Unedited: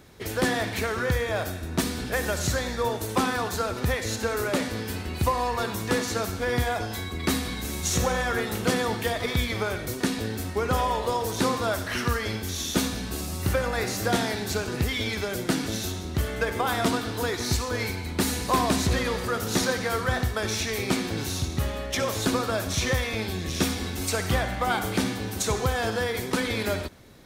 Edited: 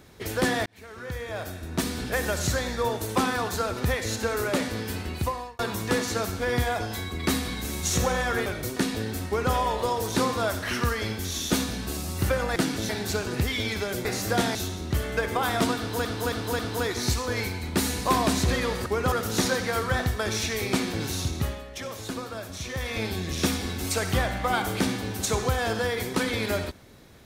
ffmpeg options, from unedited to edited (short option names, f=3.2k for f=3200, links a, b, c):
-filter_complex "[0:a]asplit=15[a][b][c][d][e][f][g][h][i][j][k][l][m][n][o];[a]atrim=end=0.66,asetpts=PTS-STARTPTS,afade=t=out:st=0.656:d=0.004:c=hsin[p];[b]atrim=start=0.66:end=5.59,asetpts=PTS-STARTPTS,afade=t=in:d=1.37,afade=t=out:st=4.42:d=0.51[q];[c]atrim=start=5.59:end=8.462,asetpts=PTS-STARTPTS,afade=t=in:d=0.004:c=hsin[r];[d]atrim=start=9.698:end=13.802[s];[e]atrim=start=15.458:end=15.792[t];[f]atrim=start=14.298:end=15.462[u];[g]atrim=start=13.798:end=14.302[v];[h]atrim=start=15.788:end=17.292[w];[i]atrim=start=17.018:end=17.292[x];[j]atrim=start=17.018:end=17.292[y];[k]atrim=start=17.018:end=19.292[z];[l]atrim=start=10.508:end=10.772[aa];[m]atrim=start=19.288:end=21.81,asetpts=PTS-STARTPTS,afade=t=out:st=2.272:d=0.25:silence=0.354813[ab];[n]atrim=start=21.81:end=22.91,asetpts=PTS-STARTPTS,volume=-9dB[ac];[o]atrim=start=22.91,asetpts=PTS-STARTPTS,afade=t=in:d=0.25:silence=0.354813[ad];[p][q][r]concat=n=3:v=0:a=1[ae];[ae][s]acrossfade=d=0.004:c1=hsin:c2=hsin[af];[af][t]acrossfade=d=0.004:c1=hsin:c2=hsin[ag];[ag][u]acrossfade=d=0.004:c1=hsin:c2=hsin[ah];[ah][v]acrossfade=d=0.004:c1=hsin:c2=hsin[ai];[ai][w]acrossfade=d=0.004:c1=hsin:c2=hsin[aj];[aj][x]acrossfade=d=0.004:c1=hsin:c2=hsin[ak];[ak][y]acrossfade=d=0.004:c1=hsin:c2=hsin[al];[al][z]acrossfade=d=0.004:c1=hsin:c2=hsin[am];[am][aa]acrossfade=d=0.004:c1=hsin:c2=hsin[an];[ab][ac][ad]concat=n=3:v=0:a=1[ao];[an][ao]acrossfade=d=0.004:c1=hsin:c2=hsin"